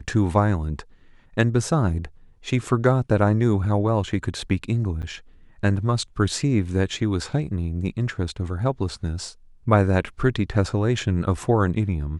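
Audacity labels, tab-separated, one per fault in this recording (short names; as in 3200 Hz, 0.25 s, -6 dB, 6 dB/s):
5.020000	5.030000	gap 8.5 ms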